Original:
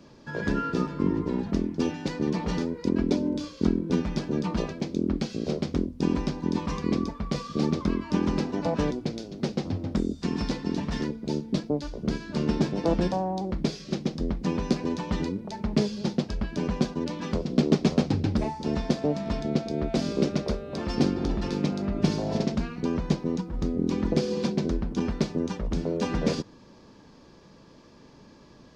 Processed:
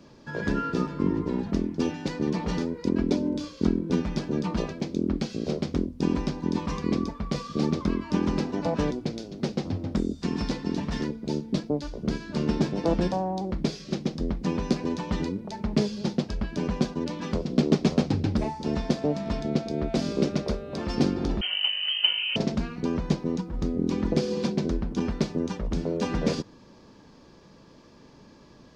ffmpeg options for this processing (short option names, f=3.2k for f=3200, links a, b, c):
-filter_complex "[0:a]asettb=1/sr,asplit=3[a][b][c];[a]atrim=end=21.414[d];[b]atrim=start=21.41:end=22.36,asetpts=PTS-STARTPTS,afade=t=in:d=0.004:c=qsin,afade=t=out:st=0.946:d=0.004:c=qsin,lowpass=f=2.7k:t=q:w=0.5098,lowpass=f=2.7k:t=q:w=0.6013,lowpass=f=2.7k:t=q:w=0.9,lowpass=f=2.7k:t=q:w=2.563,afreqshift=-3200[e];[c]atrim=start=22.356[f];[d][e]acrossfade=d=0.004:c1=hsin:c2=qsin[g];[g][f]acrossfade=d=0.004:c1=qsin:c2=hsin"